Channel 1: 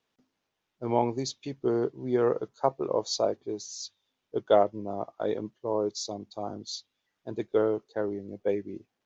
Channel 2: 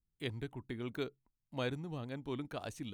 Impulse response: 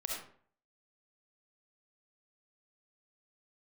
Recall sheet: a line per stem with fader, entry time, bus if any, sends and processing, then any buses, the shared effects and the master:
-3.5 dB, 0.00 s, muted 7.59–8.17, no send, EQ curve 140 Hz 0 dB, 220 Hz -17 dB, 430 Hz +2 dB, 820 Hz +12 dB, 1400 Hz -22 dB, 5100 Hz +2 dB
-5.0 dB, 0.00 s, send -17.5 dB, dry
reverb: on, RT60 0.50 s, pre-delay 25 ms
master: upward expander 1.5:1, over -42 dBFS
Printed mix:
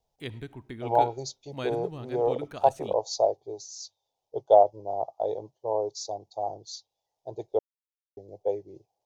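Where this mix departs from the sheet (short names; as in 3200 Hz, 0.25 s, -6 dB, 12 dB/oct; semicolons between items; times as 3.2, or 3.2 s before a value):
stem 2 -5.0 dB -> +1.0 dB; master: missing upward expander 1.5:1, over -42 dBFS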